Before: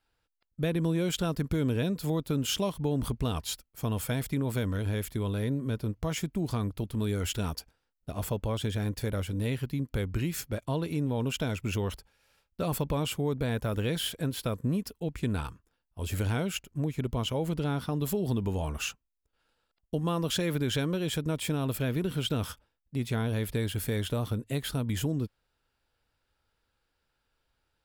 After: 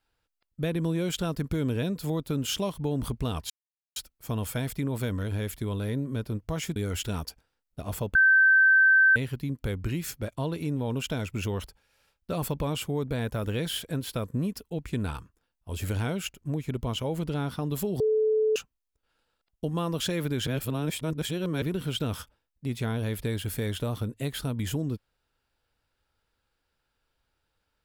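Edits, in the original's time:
3.5 insert silence 0.46 s
6.3–7.06 cut
8.45–9.46 bleep 1550 Hz -15.5 dBFS
18.3–18.86 bleep 434 Hz -20.5 dBFS
20.77–21.92 reverse

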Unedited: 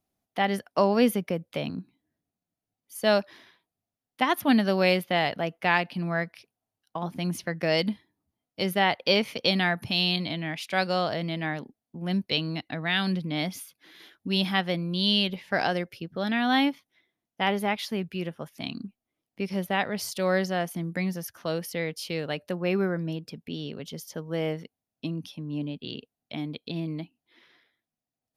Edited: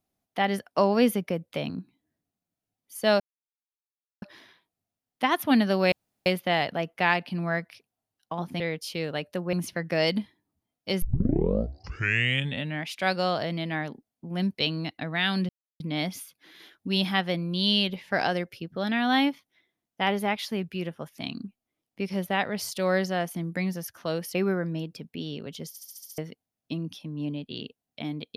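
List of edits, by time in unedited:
3.2 insert silence 1.02 s
4.9 insert room tone 0.34 s
8.73 tape start 1.81 s
13.2 insert silence 0.31 s
21.75–22.68 move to 7.24
24.02 stutter in place 0.07 s, 7 plays

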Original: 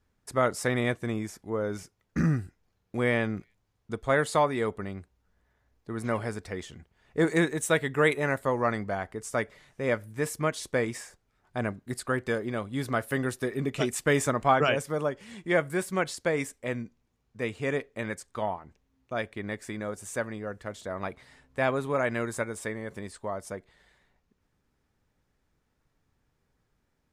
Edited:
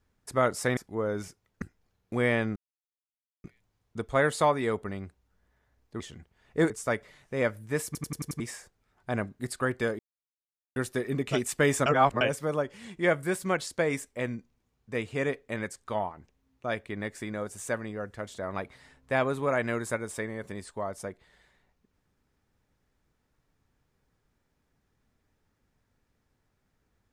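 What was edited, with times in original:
0.77–1.32 cut
2.17–2.44 cut
3.38 insert silence 0.88 s
5.94–6.6 cut
7.3–9.17 cut
10.33 stutter in place 0.09 s, 6 plays
12.46–13.23 mute
14.33–14.68 reverse

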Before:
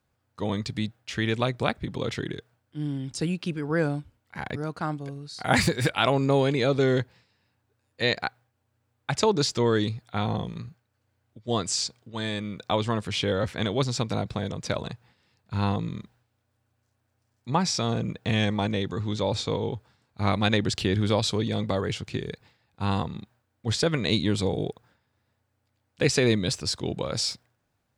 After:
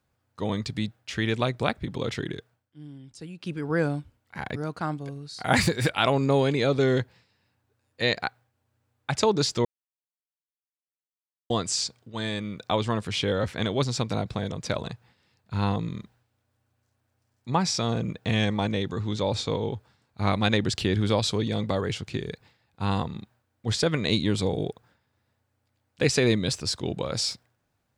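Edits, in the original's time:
2.34–3.7 dip -13 dB, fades 0.36 s equal-power
9.65–11.5 mute

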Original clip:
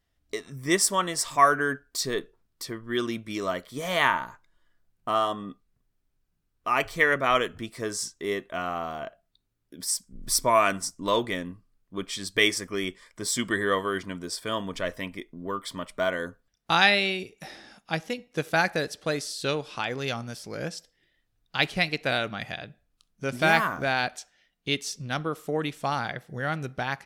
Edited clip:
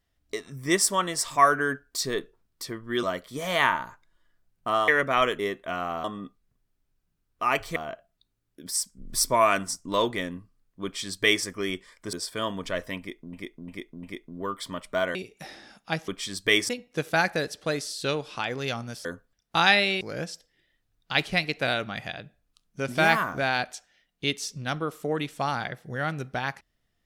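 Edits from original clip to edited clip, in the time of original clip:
3.03–3.44 cut
5.29–7.01 move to 8.9
7.52–8.25 cut
11.98–12.59 copy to 18.09
13.27–14.23 cut
15.08–15.43 loop, 4 plays
16.2–17.16 move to 20.45

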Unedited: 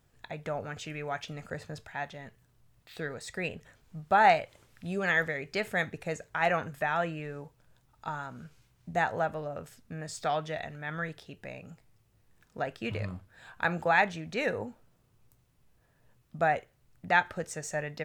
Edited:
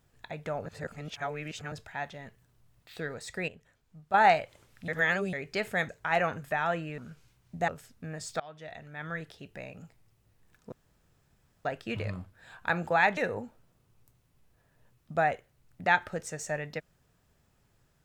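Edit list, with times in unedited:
0.66–1.72 reverse
3.48–4.14 gain -9.5 dB
4.88–5.33 reverse
5.89–6.19 cut
7.28–8.32 cut
9.02–9.56 cut
10.28–11.53 fade in equal-power, from -23.5 dB
12.6 insert room tone 0.93 s
14.12–14.41 cut

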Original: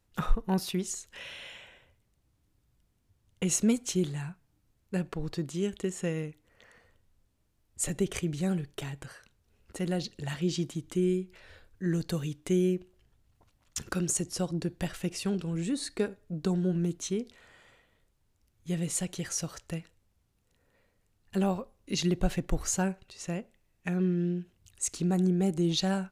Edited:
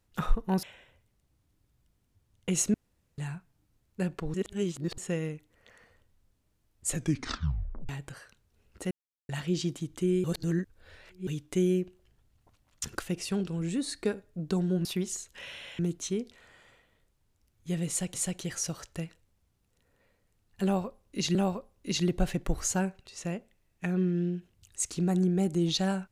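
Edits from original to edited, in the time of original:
0.63–1.57 move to 16.79
3.68–4.12 room tone
5.28–5.92 reverse
7.85 tape stop 0.98 s
9.85–10.23 mute
11.18–12.21 reverse
13.94–14.94 cut
18.88–19.14 loop, 2 plays
21.38–22.09 loop, 2 plays

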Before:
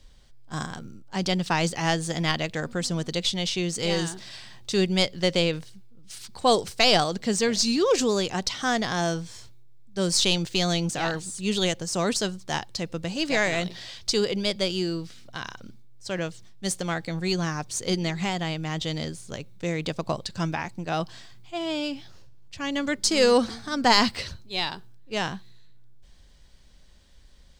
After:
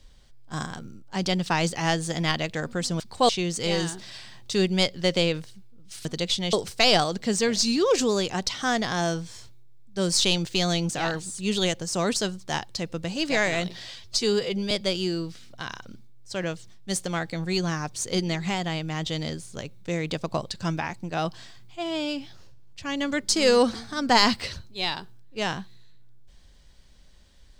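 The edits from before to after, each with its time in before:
3–3.48 swap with 6.24–6.53
13.96–14.46 stretch 1.5×

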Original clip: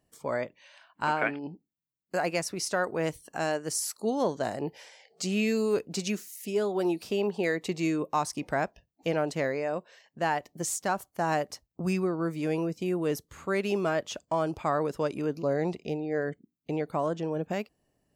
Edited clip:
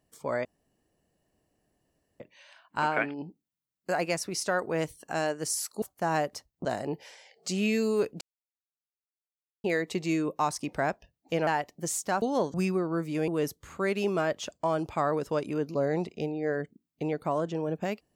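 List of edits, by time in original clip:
0.45 insert room tone 1.75 s
4.07–4.39 swap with 10.99–11.82
5.95–7.38 mute
9.21–10.24 cut
12.56–12.96 cut

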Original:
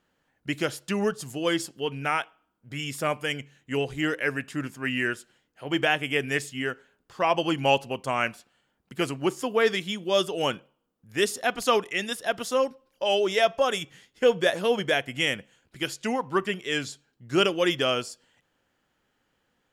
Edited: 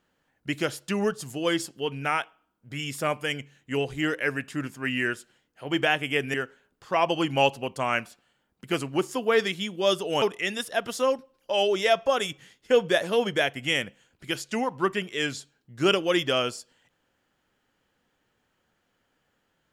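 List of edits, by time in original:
6.34–6.62 cut
10.5–11.74 cut

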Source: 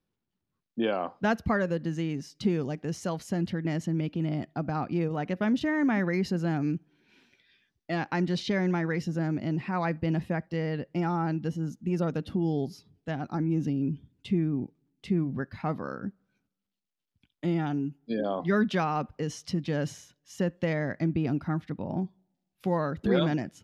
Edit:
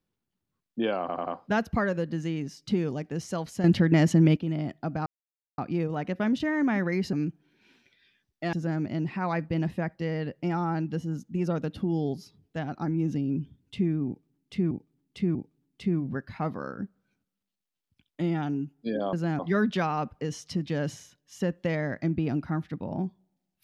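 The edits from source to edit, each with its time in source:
1 stutter 0.09 s, 4 plays
3.37–4.1 gain +9.5 dB
4.79 insert silence 0.52 s
6.34–6.6 move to 18.37
8–9.05 cut
14.59–15.23 loop, 3 plays

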